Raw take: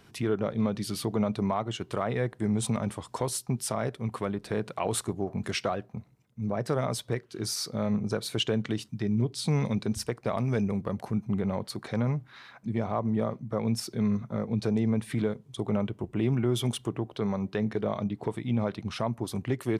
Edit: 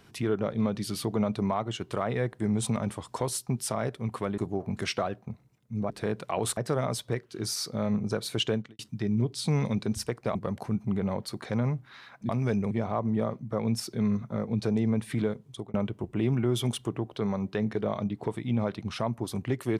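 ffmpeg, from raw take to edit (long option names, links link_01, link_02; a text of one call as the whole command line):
ffmpeg -i in.wav -filter_complex "[0:a]asplit=9[link_01][link_02][link_03][link_04][link_05][link_06][link_07][link_08][link_09];[link_01]atrim=end=4.382[link_10];[link_02]atrim=start=5.048:end=6.572[link_11];[link_03]atrim=start=4.378:end=5.052[link_12];[link_04]atrim=start=6.568:end=8.79,asetpts=PTS-STARTPTS,afade=type=out:start_time=1.972:duration=0.25:curve=qua[link_13];[link_05]atrim=start=8.79:end=10.352,asetpts=PTS-STARTPTS,afade=type=in:duration=0.004:curve=hsin[link_14];[link_06]atrim=start=10.768:end=12.712[link_15];[link_07]atrim=start=10.348:end=10.772[link_16];[link_08]atrim=start=12.708:end=15.74,asetpts=PTS-STARTPTS,afade=type=out:start_time=2.782:duration=0.25[link_17];[link_09]atrim=start=15.74,asetpts=PTS-STARTPTS,afade=type=in:duration=0.004:curve=hsin[link_18];[link_10][link_11]acrossfade=duration=0.004:curve1=hsin:curve2=hsin[link_19];[link_19][link_12]acrossfade=duration=0.004:curve1=hsin:curve2=hsin[link_20];[link_13][link_14]concat=n=2:v=0:a=1[link_21];[link_20][link_21]acrossfade=duration=0.004:curve1=hsin:curve2=hsin[link_22];[link_22][link_15]acrossfade=duration=0.004:curve1=hsin:curve2=hsin[link_23];[link_23][link_16]acrossfade=duration=0.004:curve1=hsin:curve2=hsin[link_24];[link_17][link_18]concat=n=2:v=0:a=1[link_25];[link_24][link_25]acrossfade=duration=0.004:curve1=hsin:curve2=hsin" out.wav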